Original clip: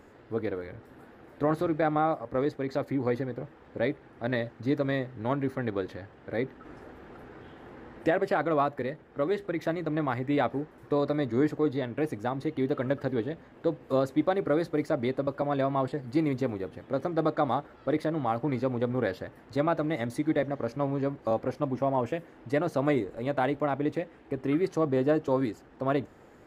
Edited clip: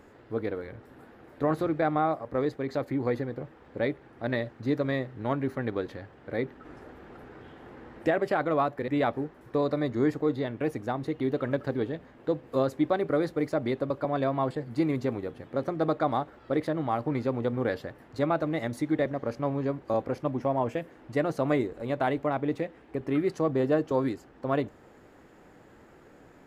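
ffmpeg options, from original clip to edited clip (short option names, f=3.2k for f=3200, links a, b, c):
-filter_complex "[0:a]asplit=2[a][b];[a]atrim=end=8.882[c];[b]atrim=start=10.248[d];[c][d]acrossfade=d=0.004:c1=hsin:c2=hsin"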